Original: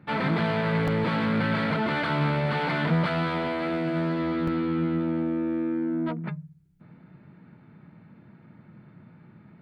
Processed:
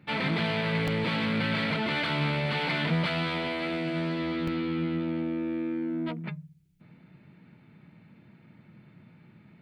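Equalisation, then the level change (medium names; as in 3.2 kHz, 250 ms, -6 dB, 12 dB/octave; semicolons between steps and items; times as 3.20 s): resonant high shelf 1.9 kHz +6.5 dB, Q 1.5; -3.5 dB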